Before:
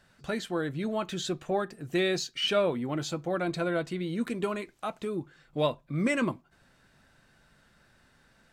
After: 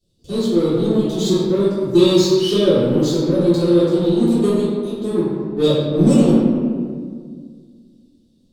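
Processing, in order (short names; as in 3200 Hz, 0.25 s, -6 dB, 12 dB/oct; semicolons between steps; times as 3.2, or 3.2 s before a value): elliptic band-stop 490–3500 Hz, stop band 40 dB; power-law curve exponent 1.4; reverb RT60 1.9 s, pre-delay 3 ms, DRR -15 dB; gain +4.5 dB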